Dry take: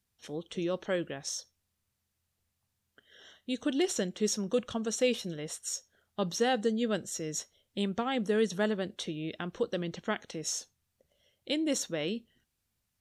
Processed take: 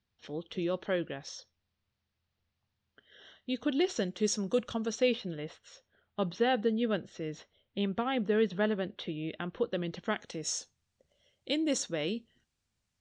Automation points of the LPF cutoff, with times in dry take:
LPF 24 dB/oct
3.83 s 4800 Hz
4.51 s 9200 Hz
5.27 s 3600 Hz
9.69 s 3600 Hz
10.26 s 8100 Hz

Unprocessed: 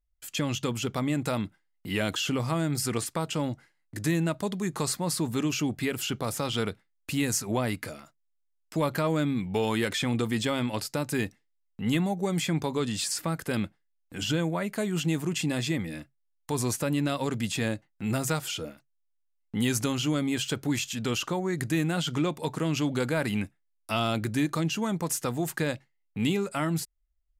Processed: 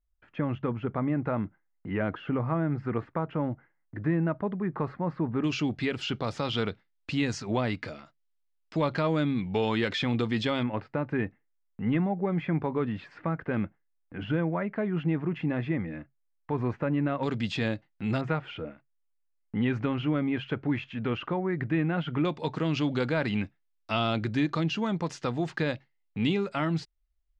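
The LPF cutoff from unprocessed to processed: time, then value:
LPF 24 dB/oct
1800 Hz
from 5.44 s 4700 Hz
from 10.63 s 2100 Hz
from 17.23 s 4600 Hz
from 18.21 s 2400 Hz
from 22.25 s 4600 Hz

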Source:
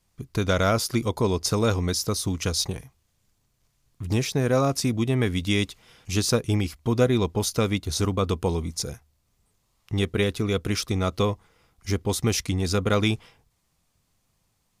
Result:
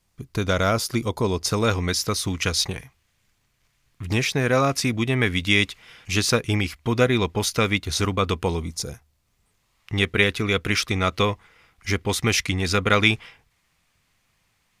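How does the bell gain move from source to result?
bell 2100 Hz 1.7 oct
1.29 s +2.5 dB
1.93 s +10.5 dB
8.43 s +10.5 dB
8.82 s +0.5 dB
9.96 s +12 dB

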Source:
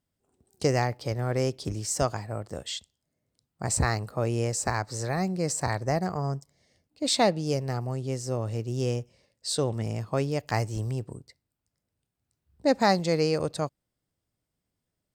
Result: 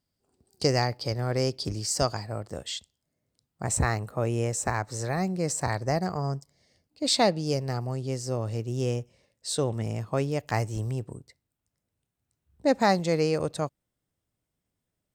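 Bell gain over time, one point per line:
bell 4700 Hz 0.25 oct
+11.5 dB
from 2.43 s +0.5 dB
from 3.63 s -11.5 dB
from 4.92 s -3 dB
from 5.73 s +4.5 dB
from 8.6 s -5 dB

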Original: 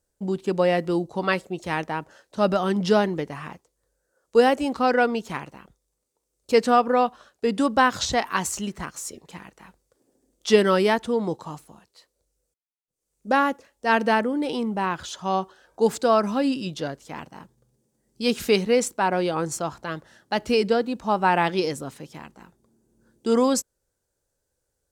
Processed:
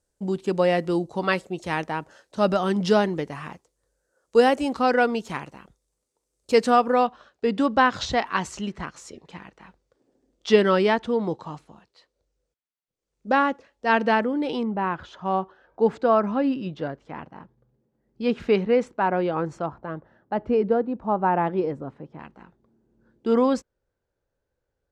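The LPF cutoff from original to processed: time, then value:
11000 Hz
from 7.07 s 4200 Hz
from 14.63 s 2000 Hz
from 19.66 s 1100 Hz
from 22.19 s 2700 Hz

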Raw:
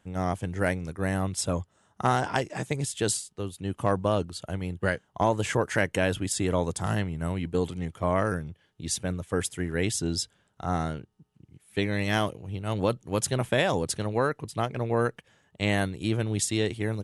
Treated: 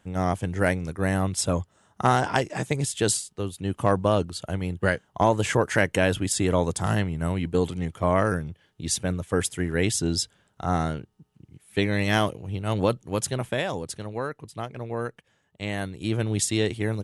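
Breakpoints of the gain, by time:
12.79 s +3.5 dB
13.84 s -5 dB
15.73 s -5 dB
16.24 s +2.5 dB

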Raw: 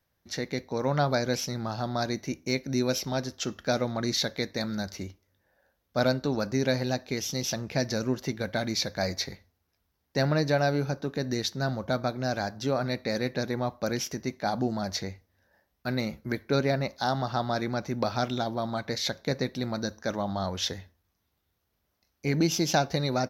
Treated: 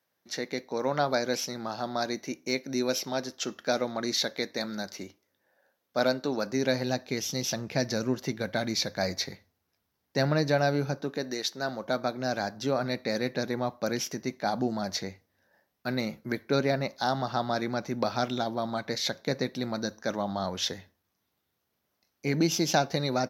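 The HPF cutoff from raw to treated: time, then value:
6.41 s 240 Hz
7 s 110 Hz
10.91 s 110 Hz
11.38 s 400 Hz
12.44 s 140 Hz

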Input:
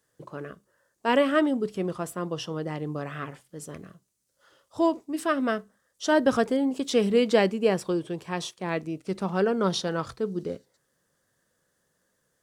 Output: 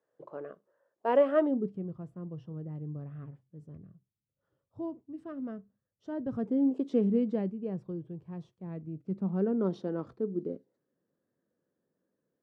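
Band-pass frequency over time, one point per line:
band-pass, Q 1.5
1.41 s 580 Hz
1.83 s 110 Hz
6.31 s 110 Hz
6.75 s 380 Hz
7.54 s 110 Hz
8.77 s 110 Hz
9.67 s 290 Hz

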